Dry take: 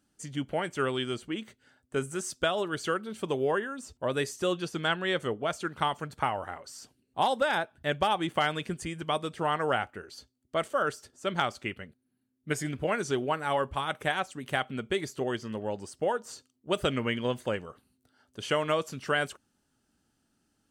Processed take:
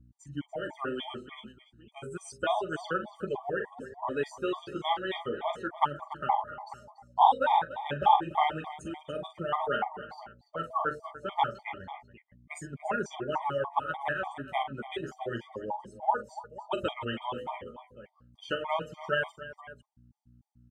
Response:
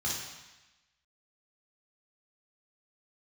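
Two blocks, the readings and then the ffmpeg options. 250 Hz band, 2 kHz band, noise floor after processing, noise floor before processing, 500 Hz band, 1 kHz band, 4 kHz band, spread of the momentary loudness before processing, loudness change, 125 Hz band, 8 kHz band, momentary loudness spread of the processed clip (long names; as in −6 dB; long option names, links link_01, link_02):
−5.5 dB, −4.0 dB, −65 dBFS, −76 dBFS, −4.0 dB, +3.5 dB, −6.0 dB, 11 LU, −1.0 dB, −6.5 dB, below −10 dB, 17 LU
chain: -filter_complex "[0:a]bandreject=frequency=50.19:width_type=h:width=4,bandreject=frequency=100.38:width_type=h:width=4,bandreject=frequency=150.57:width_type=h:width=4,bandreject=frequency=200.76:width_type=h:width=4,bandreject=frequency=250.95:width_type=h:width=4,bandreject=frequency=301.14:width_type=h:width=4,bandreject=frequency=351.33:width_type=h:width=4,bandreject=frequency=401.52:width_type=h:width=4,bandreject=frequency=451.71:width_type=h:width=4,bandreject=frequency=501.9:width_type=h:width=4,bandreject=frequency=552.09:width_type=h:width=4,bandreject=frequency=602.28:width_type=h:width=4,bandreject=frequency=652.47:width_type=h:width=4,bandreject=frequency=702.66:width_type=h:width=4,bandreject=frequency=752.85:width_type=h:width=4,bandreject=frequency=803.04:width_type=h:width=4,bandreject=frequency=853.23:width_type=h:width=4,bandreject=frequency=903.42:width_type=h:width=4,bandreject=frequency=953.61:width_type=h:width=4,bandreject=frequency=1003.8:width_type=h:width=4,afftdn=noise_reduction=15:noise_floor=-38,equalizer=frequency=890:width=2.6:gain=13.5,flanger=delay=4.8:depth=9.8:regen=1:speed=0.31:shape=sinusoidal,aeval=exprs='val(0)+0.00178*(sin(2*PI*60*n/s)+sin(2*PI*2*60*n/s)/2+sin(2*PI*3*60*n/s)/3+sin(2*PI*4*60*n/s)/4+sin(2*PI*5*60*n/s)/5)':channel_layout=same,asplit=2[link_01][link_02];[link_02]aecho=0:1:42|288|492:0.335|0.178|0.15[link_03];[link_01][link_03]amix=inputs=2:normalize=0,afftfilt=real='re*gt(sin(2*PI*3.4*pts/sr)*(1-2*mod(floor(b*sr/1024/620),2)),0)':imag='im*gt(sin(2*PI*3.4*pts/sr)*(1-2*mod(floor(b*sr/1024/620),2)),0)':win_size=1024:overlap=0.75"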